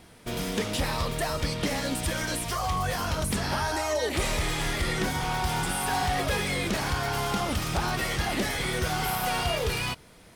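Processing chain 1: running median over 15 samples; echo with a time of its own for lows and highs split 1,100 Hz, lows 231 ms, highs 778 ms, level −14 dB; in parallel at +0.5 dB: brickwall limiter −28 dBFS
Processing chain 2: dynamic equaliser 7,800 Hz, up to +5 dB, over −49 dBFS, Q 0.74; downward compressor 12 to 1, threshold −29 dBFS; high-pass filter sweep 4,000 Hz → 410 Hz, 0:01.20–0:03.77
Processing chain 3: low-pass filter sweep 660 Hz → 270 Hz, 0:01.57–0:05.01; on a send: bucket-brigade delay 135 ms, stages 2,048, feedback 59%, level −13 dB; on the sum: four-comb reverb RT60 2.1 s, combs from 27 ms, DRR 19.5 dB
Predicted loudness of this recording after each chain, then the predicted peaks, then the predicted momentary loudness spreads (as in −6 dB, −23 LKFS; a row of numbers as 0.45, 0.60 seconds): −26.5, −31.0, −29.5 LKFS; −15.5, −18.0, −13.0 dBFS; 2, 3, 5 LU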